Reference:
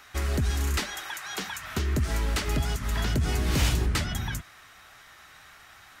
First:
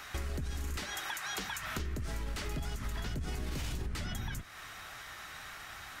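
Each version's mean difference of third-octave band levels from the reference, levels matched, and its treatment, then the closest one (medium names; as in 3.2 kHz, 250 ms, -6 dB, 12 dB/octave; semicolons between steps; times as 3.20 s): 6.5 dB: octave divider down 2 oct, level -4 dB; peak limiter -21 dBFS, peak gain reduction 10 dB; compression 4:1, threshold -41 dBFS, peak gain reduction 14 dB; trim +4.5 dB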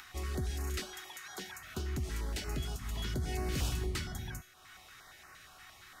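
3.5 dB: upward compressor, threshold -35 dBFS; feedback comb 370 Hz, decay 0.59 s, mix 80%; step-sequenced notch 8.6 Hz 530–3400 Hz; trim +3.5 dB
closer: second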